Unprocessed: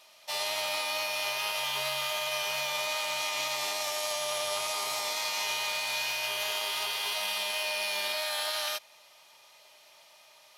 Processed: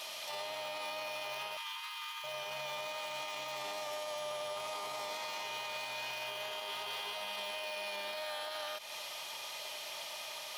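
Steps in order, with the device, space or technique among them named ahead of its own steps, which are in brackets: broadcast voice chain (high-pass 96 Hz; de-esser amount 100%; compression, threshold -45 dBFS, peak gain reduction 11 dB; peaking EQ 3.2 kHz +3.5 dB 0.3 oct; peak limiter -44.5 dBFS, peak gain reduction 11.5 dB); 1.57–2.24 s: steep high-pass 910 Hz 72 dB/octave; trim +12.5 dB

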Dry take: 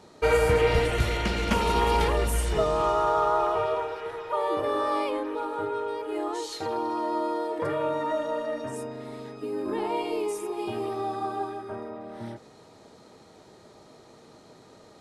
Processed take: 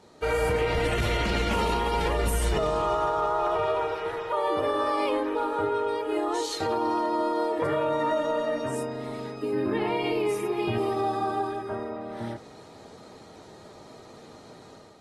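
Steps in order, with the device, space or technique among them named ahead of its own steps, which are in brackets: 9.53–10.78 s: graphic EQ 125/1000/2000/8000 Hz +11/-4/+7/-8 dB; low-bitrate web radio (level rider gain up to 6.5 dB; peak limiter -15 dBFS, peak gain reduction 10 dB; trim -3 dB; AAC 32 kbps 44.1 kHz)

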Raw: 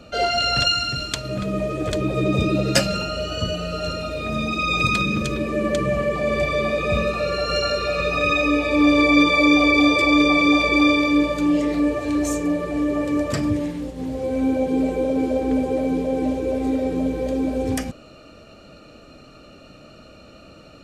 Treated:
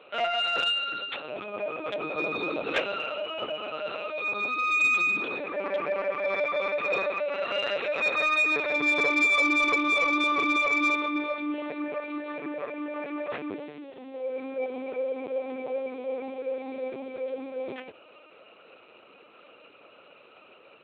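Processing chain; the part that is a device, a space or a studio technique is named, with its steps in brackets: 7.61–9.33 s: comb 4.6 ms, depth 71%; talking toy (LPC vocoder at 8 kHz pitch kept; high-pass 420 Hz 12 dB/octave; peaking EQ 2.5 kHz +5 dB 0.24 oct; saturation -10.5 dBFS, distortion -21 dB); trim -5 dB

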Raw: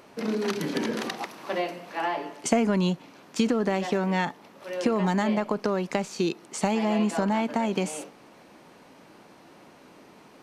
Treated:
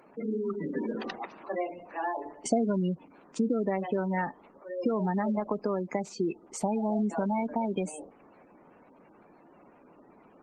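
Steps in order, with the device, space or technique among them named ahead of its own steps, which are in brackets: 1.38–2.24 s: high-pass 120 Hz -> 270 Hz 24 dB/octave; noise-suppressed video call (high-pass 140 Hz 12 dB/octave; spectral gate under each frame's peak -15 dB strong; trim -3 dB; Opus 20 kbps 48 kHz)

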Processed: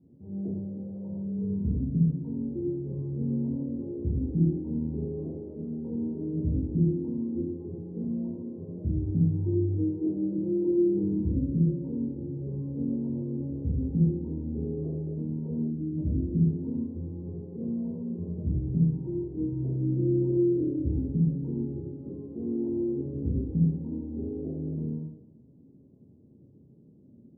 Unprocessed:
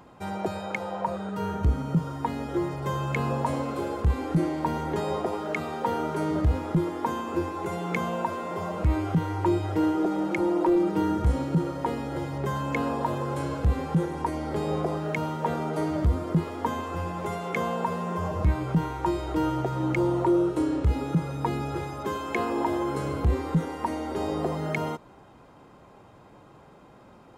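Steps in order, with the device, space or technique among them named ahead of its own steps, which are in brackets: next room (low-pass 300 Hz 24 dB/octave; reverberation RT60 0.90 s, pre-delay 11 ms, DRR -8 dB); time-frequency box 15.70–15.98 s, 370–1200 Hz -12 dB; high-pass 88 Hz; trim -6.5 dB

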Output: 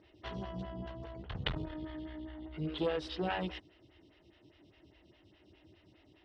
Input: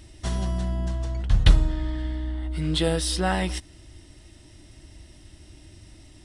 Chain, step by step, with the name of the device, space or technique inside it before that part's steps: vibe pedal into a guitar amplifier (lamp-driven phase shifter 4.9 Hz; valve stage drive 19 dB, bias 0.55; cabinet simulation 91–4100 Hz, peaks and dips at 230 Hz -3 dB, 430 Hz +5 dB, 2.9 kHz +5 dB); trim -4 dB

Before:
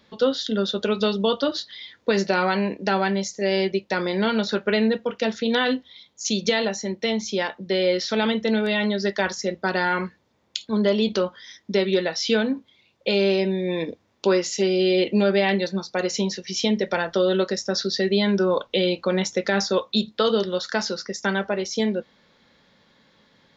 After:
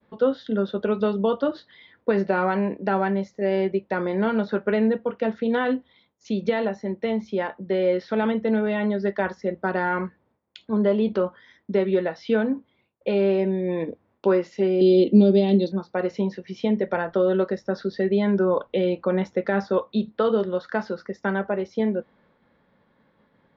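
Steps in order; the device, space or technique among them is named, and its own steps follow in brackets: hearing-loss simulation (low-pass 1.5 kHz 12 dB/octave; expander -58 dBFS); 14.81–15.72 s: FFT filter 130 Hz 0 dB, 260 Hz +10 dB, 1.7 kHz -20 dB, 3.8 kHz +12 dB, 6.6 kHz +8 dB

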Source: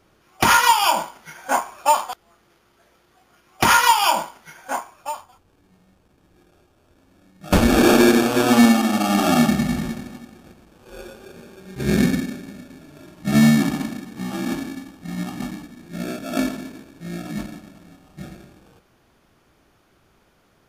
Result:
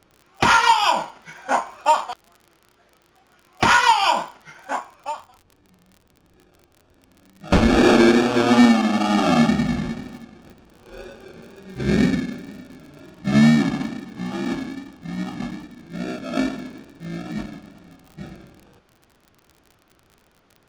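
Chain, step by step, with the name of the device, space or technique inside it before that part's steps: lo-fi chain (low-pass 5.4 kHz 12 dB/octave; wow and flutter; crackle 41 per s -36 dBFS)

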